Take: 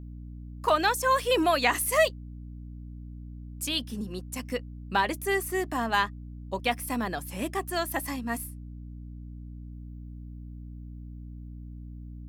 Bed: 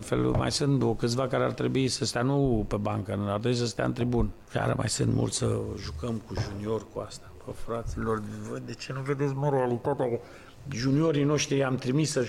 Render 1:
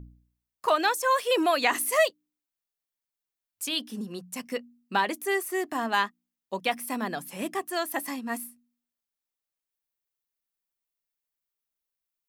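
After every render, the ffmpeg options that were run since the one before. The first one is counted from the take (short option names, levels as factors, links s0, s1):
-af "bandreject=f=60:t=h:w=4,bandreject=f=120:t=h:w=4,bandreject=f=180:t=h:w=4,bandreject=f=240:t=h:w=4,bandreject=f=300:t=h:w=4"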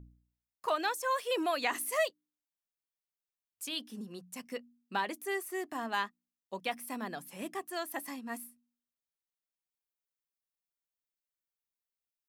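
-af "volume=0.398"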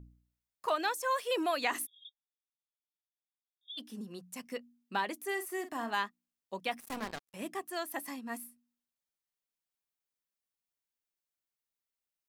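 -filter_complex "[0:a]asplit=3[s0][s1][s2];[s0]afade=t=out:st=1.85:d=0.02[s3];[s1]asuperpass=centerf=3500:order=20:qfactor=7.4,afade=t=in:st=1.85:d=0.02,afade=t=out:st=3.77:d=0.02[s4];[s2]afade=t=in:st=3.77:d=0.02[s5];[s3][s4][s5]amix=inputs=3:normalize=0,asettb=1/sr,asplit=3[s6][s7][s8];[s6]atrim=end=5.244[s9];[s7]atrim=start=5.24:end=5.94,asetpts=PTS-STARTPTS,afade=t=in:d=0.004:c=qsin,afade=t=out:st=0.696:d=0.004:c=qsin,asplit=2[s10][s11];[s11]adelay=47,volume=0.282[s12];[s10][s12]amix=inputs=2:normalize=0,atrim=end_sample=30870[s13];[s8]atrim=start=5.936[s14];[s9][s13]acrossfade=d=0.004:c1=hsin:c2=qsin[s15];[s15][s14]acrossfade=d=0.004:c1=qsin:c2=hsin,asettb=1/sr,asplit=3[s16][s17][s18];[s16]atrim=end=6.804[s19];[s17]atrim=start=6.8:end=7.34,asetpts=PTS-STARTPTS,afade=t=in:d=0.004:c=qsin,afade=t=out:st=0.536:d=0.004:c=qsin,acrusher=bits=5:mix=0:aa=0.5[s20];[s18]atrim=start=7.336[s21];[s19][s20]acrossfade=d=0.004:c1=hsin:c2=qsin[s22];[s22][s21]acrossfade=d=0.004:c1=qsin:c2=hsin"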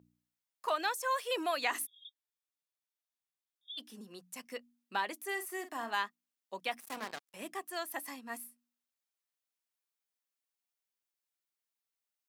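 -af "highpass=140,lowshelf=f=310:g=-10.5"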